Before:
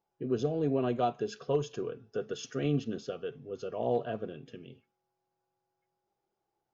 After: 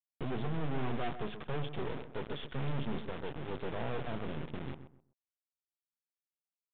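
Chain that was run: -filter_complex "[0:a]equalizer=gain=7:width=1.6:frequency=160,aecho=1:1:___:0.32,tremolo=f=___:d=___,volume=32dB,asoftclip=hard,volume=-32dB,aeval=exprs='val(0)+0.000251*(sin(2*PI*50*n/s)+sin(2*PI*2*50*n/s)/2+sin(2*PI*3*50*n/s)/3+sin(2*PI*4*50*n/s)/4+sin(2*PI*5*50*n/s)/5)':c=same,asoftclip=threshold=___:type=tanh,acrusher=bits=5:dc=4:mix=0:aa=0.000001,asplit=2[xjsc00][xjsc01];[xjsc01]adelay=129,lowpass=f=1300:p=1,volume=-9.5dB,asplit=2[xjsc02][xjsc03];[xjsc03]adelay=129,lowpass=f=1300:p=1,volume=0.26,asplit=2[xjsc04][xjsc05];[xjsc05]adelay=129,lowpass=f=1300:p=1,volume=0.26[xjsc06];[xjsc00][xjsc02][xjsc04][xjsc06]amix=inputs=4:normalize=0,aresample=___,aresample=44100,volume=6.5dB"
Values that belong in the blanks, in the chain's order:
0.9, 1.1, 0.33, -34.5dB, 8000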